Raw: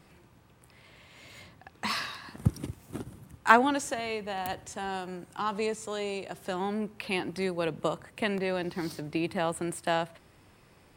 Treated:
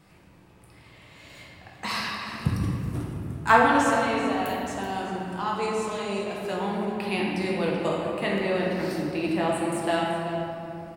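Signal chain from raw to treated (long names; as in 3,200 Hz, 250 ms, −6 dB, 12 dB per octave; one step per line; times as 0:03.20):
on a send: single-tap delay 381 ms −14 dB
on the sum: rectangular room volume 120 cubic metres, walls hard, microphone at 0.61 metres
level −1 dB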